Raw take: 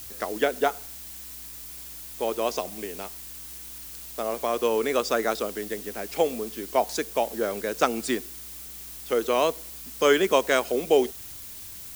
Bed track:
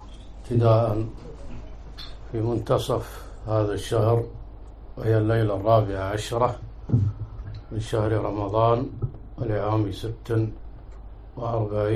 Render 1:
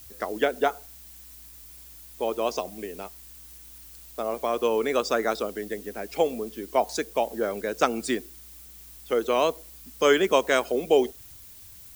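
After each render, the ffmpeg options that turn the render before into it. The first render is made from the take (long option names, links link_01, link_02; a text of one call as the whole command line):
ffmpeg -i in.wav -af "afftdn=noise_reduction=8:noise_floor=-41" out.wav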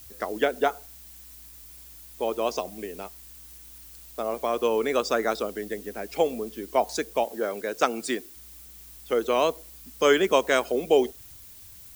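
ffmpeg -i in.wav -filter_complex "[0:a]asettb=1/sr,asplit=3[link_01][link_02][link_03];[link_01]atrim=end=7.244[link_04];[link_02]atrim=start=7.24:end=8.36,asetpts=PTS-STARTPTS,afade=type=in:duration=0.004:curve=qsin,afade=type=out:start_time=1.116:duration=0.004:curve=qsin,highpass=frequency=250:poles=1[link_05];[link_03]atrim=start=8.356[link_06];[link_04][link_05]acrossfade=duration=0.004:curve1=hsin:curve2=qsin[link_07];[link_07][link_06]acrossfade=duration=0.004:curve1=qsin:curve2=hsin" out.wav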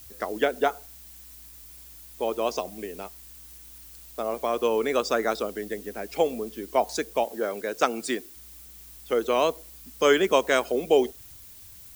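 ffmpeg -i in.wav -af anull out.wav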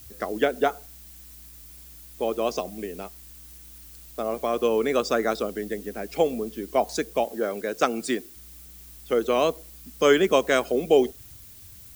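ffmpeg -i in.wav -af "equalizer=frequency=120:width=0.48:gain=6,bandreject=frequency=930:width=10" out.wav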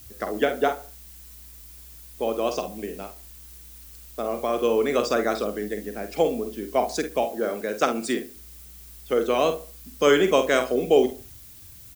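ffmpeg -i in.wav -filter_complex "[0:a]asplit=2[link_01][link_02];[link_02]adelay=48,volume=-8.5dB[link_03];[link_01][link_03]amix=inputs=2:normalize=0,asplit=2[link_04][link_05];[link_05]adelay=71,lowpass=frequency=2000:poles=1,volume=-15dB,asplit=2[link_06][link_07];[link_07]adelay=71,lowpass=frequency=2000:poles=1,volume=0.34,asplit=2[link_08][link_09];[link_09]adelay=71,lowpass=frequency=2000:poles=1,volume=0.34[link_10];[link_04][link_06][link_08][link_10]amix=inputs=4:normalize=0" out.wav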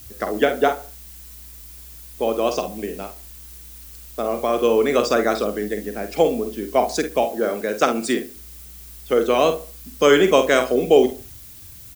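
ffmpeg -i in.wav -af "volume=4.5dB,alimiter=limit=-3dB:level=0:latency=1" out.wav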